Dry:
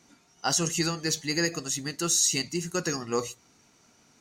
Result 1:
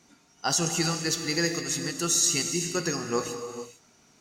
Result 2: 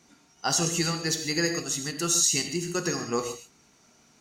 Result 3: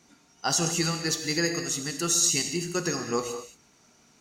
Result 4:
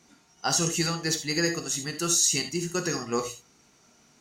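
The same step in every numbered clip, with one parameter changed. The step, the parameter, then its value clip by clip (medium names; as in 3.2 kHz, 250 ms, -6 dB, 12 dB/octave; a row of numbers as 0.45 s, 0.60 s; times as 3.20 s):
gated-style reverb, gate: 480 ms, 170 ms, 250 ms, 100 ms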